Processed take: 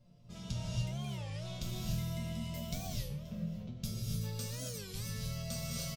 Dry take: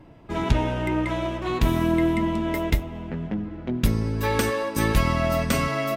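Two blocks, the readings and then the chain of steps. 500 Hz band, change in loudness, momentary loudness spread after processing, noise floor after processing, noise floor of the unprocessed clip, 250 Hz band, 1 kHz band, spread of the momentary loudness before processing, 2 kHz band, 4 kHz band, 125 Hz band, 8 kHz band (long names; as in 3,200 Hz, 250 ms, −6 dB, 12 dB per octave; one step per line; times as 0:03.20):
−22.0 dB, −15.0 dB, 4 LU, −54 dBFS, −39 dBFS, −18.0 dB, −24.5 dB, 9 LU, −21.5 dB, −9.0 dB, −11.0 dB, −6.5 dB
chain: mains-hum notches 50/100/150/200 Hz
resonators tuned to a chord A#2 major, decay 0.37 s
single-tap delay 528 ms −23.5 dB
reverb whose tail is shaped and stops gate 320 ms rising, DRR −3.5 dB
in parallel at −1 dB: downward compressor, threshold −44 dBFS, peak gain reduction 13.5 dB
on the sum: drawn EQ curve 100 Hz 0 dB, 210 Hz +4 dB, 310 Hz −21 dB, 580 Hz −2 dB, 830 Hz −17 dB, 1,200 Hz −9 dB, 1,800 Hz −15 dB, 5,100 Hz +13 dB, 9,300 Hz +10 dB
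speech leveller 2 s
high-shelf EQ 4,800 Hz −7.5 dB
wow of a warped record 33 1/3 rpm, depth 250 cents
level −3.5 dB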